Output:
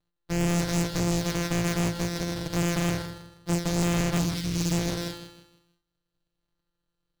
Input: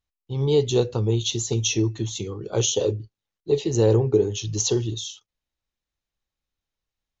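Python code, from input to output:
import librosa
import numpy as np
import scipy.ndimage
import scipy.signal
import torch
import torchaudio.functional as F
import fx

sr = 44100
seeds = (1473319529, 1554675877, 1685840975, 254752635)

p1 = np.r_[np.sort(x[:len(x) // 256 * 256].reshape(-1, 256), axis=1).ravel(), x[len(x) // 256 * 256:]]
p2 = fx.peak_eq(p1, sr, hz=3900.0, db=11.5, octaves=0.41)
p3 = p2 + 0.58 * np.pad(p2, (int(6.5 * sr / 1000.0), 0))[:len(p2)]
p4 = fx.sample_hold(p3, sr, seeds[0], rate_hz=3100.0, jitter_pct=0)
p5 = p3 + (p4 * 10.0 ** (-12.0 / 20.0))
p6 = fx.spec_erase(p5, sr, start_s=4.19, length_s=0.54, low_hz=330.0, high_hz=1600.0)
p7 = 10.0 ** (-20.0 / 20.0) * np.tanh(p6 / 10.0 ** (-20.0 / 20.0))
p8 = p7 + fx.echo_feedback(p7, sr, ms=159, feedback_pct=34, wet_db=-10, dry=0)
y = fx.doppler_dist(p8, sr, depth_ms=0.82)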